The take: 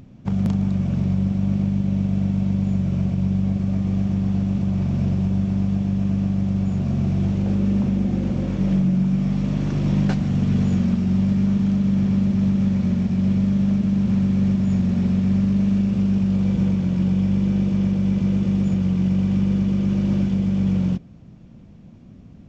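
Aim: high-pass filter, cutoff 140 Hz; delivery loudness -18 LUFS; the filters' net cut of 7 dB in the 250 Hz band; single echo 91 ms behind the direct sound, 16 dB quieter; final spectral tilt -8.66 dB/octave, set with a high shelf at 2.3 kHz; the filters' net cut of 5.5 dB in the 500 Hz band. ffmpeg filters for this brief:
-af "highpass=140,equalizer=f=250:t=o:g=-8.5,equalizer=f=500:t=o:g=-4.5,highshelf=f=2300:g=4.5,aecho=1:1:91:0.158,volume=2.99"

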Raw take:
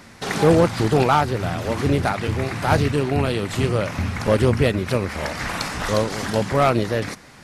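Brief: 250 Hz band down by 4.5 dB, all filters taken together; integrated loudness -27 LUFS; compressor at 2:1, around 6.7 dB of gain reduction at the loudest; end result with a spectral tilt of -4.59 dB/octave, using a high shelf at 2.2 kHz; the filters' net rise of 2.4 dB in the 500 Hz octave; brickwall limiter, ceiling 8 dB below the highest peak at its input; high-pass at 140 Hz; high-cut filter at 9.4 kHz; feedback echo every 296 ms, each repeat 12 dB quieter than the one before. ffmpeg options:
-af "highpass=140,lowpass=9400,equalizer=f=250:t=o:g=-7.5,equalizer=f=500:t=o:g=5,highshelf=f=2200:g=-5,acompressor=threshold=0.0794:ratio=2,alimiter=limit=0.15:level=0:latency=1,aecho=1:1:296|592|888:0.251|0.0628|0.0157"

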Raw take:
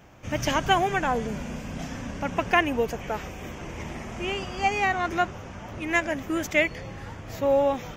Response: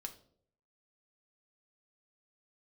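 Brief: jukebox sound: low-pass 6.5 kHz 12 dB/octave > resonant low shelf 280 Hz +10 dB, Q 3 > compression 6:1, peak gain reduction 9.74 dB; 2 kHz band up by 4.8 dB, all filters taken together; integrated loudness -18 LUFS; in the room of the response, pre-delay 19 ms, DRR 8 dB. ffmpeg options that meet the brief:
-filter_complex "[0:a]equalizer=f=2000:t=o:g=6,asplit=2[s0][s1];[1:a]atrim=start_sample=2205,adelay=19[s2];[s1][s2]afir=irnorm=-1:irlink=0,volume=0.596[s3];[s0][s3]amix=inputs=2:normalize=0,lowpass=6500,lowshelf=f=280:t=q:w=3:g=10,acompressor=threshold=0.0891:ratio=6,volume=2.51"

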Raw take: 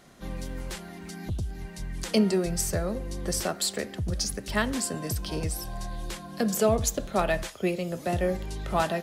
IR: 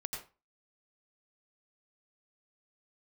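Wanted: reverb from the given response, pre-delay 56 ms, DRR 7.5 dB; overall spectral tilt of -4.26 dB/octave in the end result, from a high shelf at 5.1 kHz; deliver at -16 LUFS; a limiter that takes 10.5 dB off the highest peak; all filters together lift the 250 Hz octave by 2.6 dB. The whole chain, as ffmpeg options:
-filter_complex "[0:a]equalizer=f=250:t=o:g=3.5,highshelf=f=5100:g=5.5,alimiter=limit=0.106:level=0:latency=1,asplit=2[s0][s1];[1:a]atrim=start_sample=2205,adelay=56[s2];[s1][s2]afir=irnorm=-1:irlink=0,volume=0.398[s3];[s0][s3]amix=inputs=2:normalize=0,volume=5.31"

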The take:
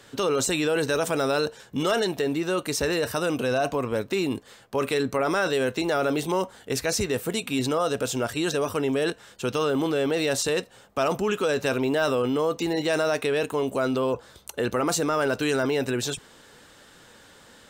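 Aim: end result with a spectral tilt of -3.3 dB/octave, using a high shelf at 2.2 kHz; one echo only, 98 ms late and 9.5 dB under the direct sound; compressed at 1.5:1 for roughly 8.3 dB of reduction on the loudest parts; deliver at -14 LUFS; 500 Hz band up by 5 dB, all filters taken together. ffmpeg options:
-af "equalizer=f=500:t=o:g=5.5,highshelf=f=2200:g=7,acompressor=threshold=0.01:ratio=1.5,aecho=1:1:98:0.335,volume=5.62"

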